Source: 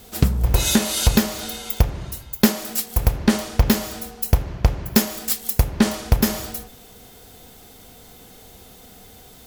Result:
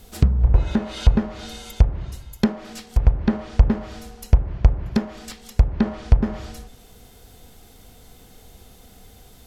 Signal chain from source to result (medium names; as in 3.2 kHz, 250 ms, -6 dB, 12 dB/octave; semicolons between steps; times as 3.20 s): low-pass that closes with the level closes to 1.3 kHz, closed at -14.5 dBFS; bass shelf 84 Hz +11.5 dB; trim -4.5 dB